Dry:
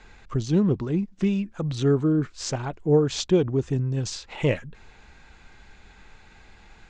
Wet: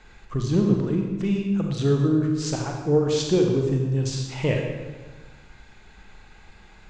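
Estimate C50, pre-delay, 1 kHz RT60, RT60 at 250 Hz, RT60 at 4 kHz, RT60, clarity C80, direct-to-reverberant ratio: 3.0 dB, 31 ms, 1.2 s, 1.6 s, 1.1 s, 1.3 s, 4.5 dB, 1.5 dB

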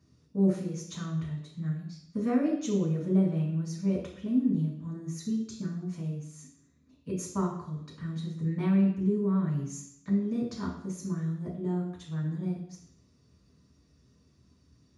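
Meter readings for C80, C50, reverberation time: 8.5 dB, 5.0 dB, 0.70 s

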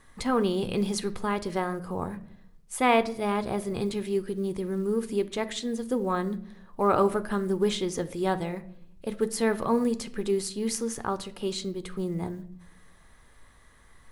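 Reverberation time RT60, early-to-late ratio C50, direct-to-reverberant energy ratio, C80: 0.65 s, 16.5 dB, 11.0 dB, 20.0 dB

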